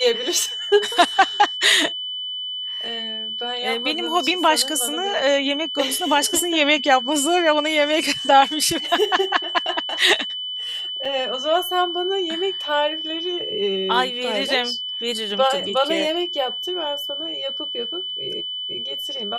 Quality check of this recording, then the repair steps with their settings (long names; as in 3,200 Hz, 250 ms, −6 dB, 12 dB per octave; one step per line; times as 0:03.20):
whistle 3,000 Hz −26 dBFS
0:11.05: drop-out 4.4 ms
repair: notch filter 3,000 Hz, Q 30
repair the gap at 0:11.05, 4.4 ms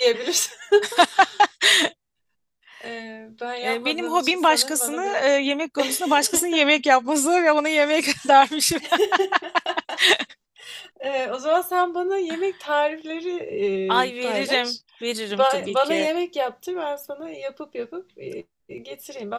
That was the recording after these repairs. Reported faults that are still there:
none of them is left